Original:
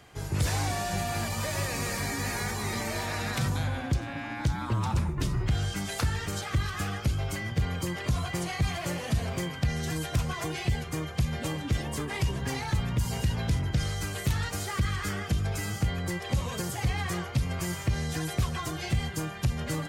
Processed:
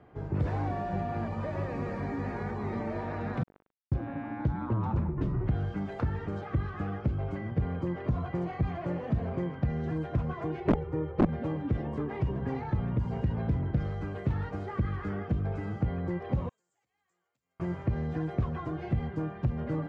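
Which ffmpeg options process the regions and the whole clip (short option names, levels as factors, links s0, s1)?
-filter_complex "[0:a]asettb=1/sr,asplit=3[s0][s1][s2];[s0]atrim=end=3.434[s3];[s1]atrim=start=3.43:end=3.92,asetpts=PTS-STARTPTS,afade=t=in:d=0.004:c=qsin,afade=t=out:st=0.486:d=0.004:c=qsin,lowpass=f=2400:w=0.5412,lowpass=f=2400:w=1.3066,aecho=1:1:3.9:0.61,atrim=end_sample=21609,acrusher=bits=2:mix=0:aa=0.5[s4];[s2]atrim=start=3.916[s5];[s3][s4]acrossfade=d=0.004:c1=hsin:c2=qsin[s6];[s6][s5]acrossfade=d=0.004:c1=qsin:c2=hsin,asettb=1/sr,asplit=3[s7][s8][s9];[s7]atrim=end=10.604[s10];[s8]atrim=start=10.6:end=11.29,asetpts=PTS-STARTPTS,afade=t=in:d=0.004:c=qsin,afade=t=out:st=0.686:d=0.004:c=qsin,highshelf=f=2100:g=-10.5,aecho=1:1:2.2:0.88,atrim=end_sample=30429,aeval=exprs='(mod(7.08*val(0)+1,2)-1)/7.08':c=same[s11];[s9]atrim=start=11.286[s12];[s10][s11]acrossfade=d=0.004:c1=hsin:c2=qsin[s13];[s13][s12]acrossfade=d=0.004:c1=qsin:c2=hsin,asettb=1/sr,asplit=3[s14][s15][s16];[s14]atrim=end=16.494[s17];[s15]atrim=start=16.49:end=17.6,asetpts=PTS-STARTPTS,afade=t=in:d=0.004:c=qsin,afade=t=out:st=1.106:d=0.004:c=qsin,acompressor=threshold=0.0282:ratio=2.5:attack=3.2:release=140:knee=1:detection=peak,bandpass=f=7400:t=q:w=9.9[s18];[s16]atrim=start=17.596[s19];[s17][s18]acrossfade=d=0.004:c1=hsin:c2=qsin[s20];[s20][s19]acrossfade=d=0.004:c1=qsin:c2=hsin,lowpass=1400,equalizer=f=300:t=o:w=2.6:g=7.5,volume=0.562"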